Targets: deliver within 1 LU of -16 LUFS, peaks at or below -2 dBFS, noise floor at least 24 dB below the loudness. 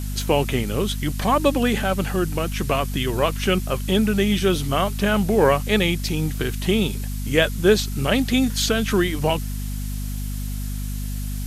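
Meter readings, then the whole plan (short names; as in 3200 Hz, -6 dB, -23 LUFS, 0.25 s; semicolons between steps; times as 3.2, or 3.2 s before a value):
hum 50 Hz; harmonics up to 250 Hz; hum level -25 dBFS; noise floor -28 dBFS; noise floor target -46 dBFS; loudness -22.0 LUFS; peak -3.5 dBFS; loudness target -16.0 LUFS
-> notches 50/100/150/200/250 Hz; noise print and reduce 18 dB; gain +6 dB; limiter -2 dBFS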